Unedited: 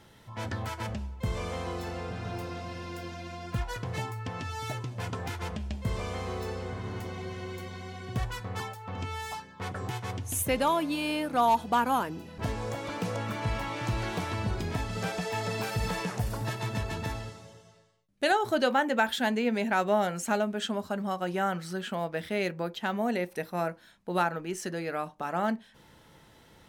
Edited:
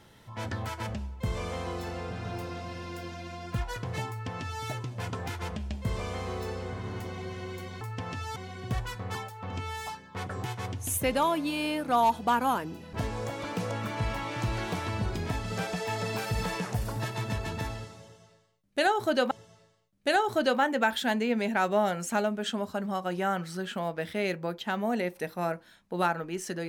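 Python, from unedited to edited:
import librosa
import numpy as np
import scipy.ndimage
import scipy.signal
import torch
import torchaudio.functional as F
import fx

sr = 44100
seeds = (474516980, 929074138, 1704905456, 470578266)

y = fx.edit(x, sr, fx.duplicate(start_s=4.09, length_s=0.55, to_s=7.81),
    fx.repeat(start_s=17.47, length_s=1.29, count=2), tone=tone)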